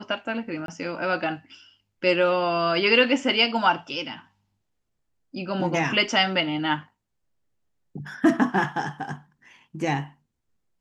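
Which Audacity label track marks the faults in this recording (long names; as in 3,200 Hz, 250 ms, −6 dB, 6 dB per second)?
0.660000	0.680000	drop-out 22 ms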